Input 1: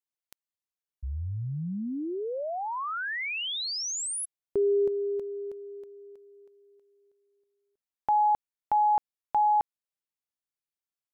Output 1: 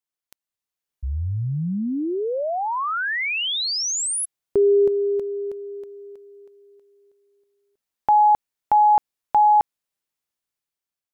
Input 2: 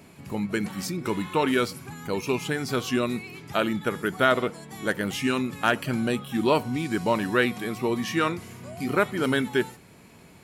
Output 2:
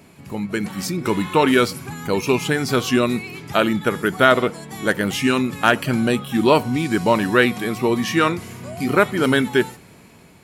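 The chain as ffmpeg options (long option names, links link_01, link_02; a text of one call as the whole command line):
ffmpeg -i in.wav -af "dynaudnorm=framelen=230:gausssize=7:maxgain=6dB,volume=2dB" out.wav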